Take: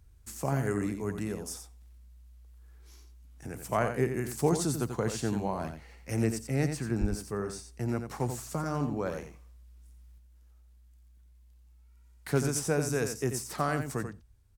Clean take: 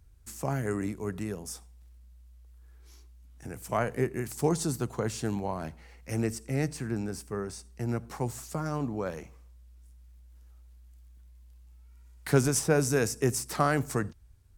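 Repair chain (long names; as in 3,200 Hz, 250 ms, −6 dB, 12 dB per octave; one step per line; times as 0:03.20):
0:07.00–0:07.12: high-pass filter 140 Hz 24 dB per octave
echo removal 88 ms −8 dB
0:10.18: level correction +4.5 dB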